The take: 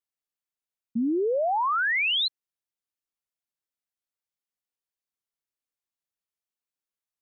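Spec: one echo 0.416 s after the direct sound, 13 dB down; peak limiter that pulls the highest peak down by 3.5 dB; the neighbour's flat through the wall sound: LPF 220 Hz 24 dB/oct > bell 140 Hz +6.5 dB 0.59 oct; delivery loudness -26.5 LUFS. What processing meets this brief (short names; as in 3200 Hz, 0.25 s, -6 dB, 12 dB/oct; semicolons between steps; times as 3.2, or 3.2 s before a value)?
limiter -25 dBFS; LPF 220 Hz 24 dB/oct; bell 140 Hz +6.5 dB 0.59 oct; echo 0.416 s -13 dB; gain +15.5 dB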